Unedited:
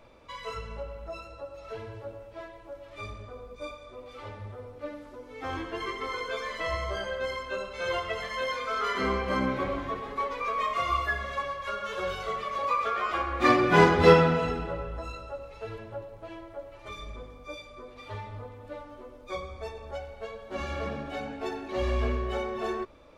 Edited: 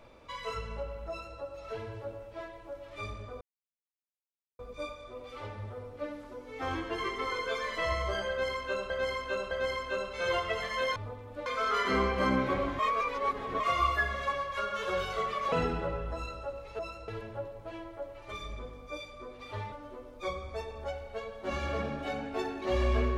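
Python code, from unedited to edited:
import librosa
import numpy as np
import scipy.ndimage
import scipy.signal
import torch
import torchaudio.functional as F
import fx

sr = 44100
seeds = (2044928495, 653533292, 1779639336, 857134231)

y = fx.edit(x, sr, fx.duplicate(start_s=1.09, length_s=0.29, to_s=15.65),
    fx.insert_silence(at_s=3.41, length_s=1.18),
    fx.repeat(start_s=7.11, length_s=0.61, count=3),
    fx.reverse_span(start_s=9.89, length_s=0.81),
    fx.cut(start_s=12.62, length_s=1.76),
    fx.move(start_s=18.29, length_s=0.5, to_s=8.56), tone=tone)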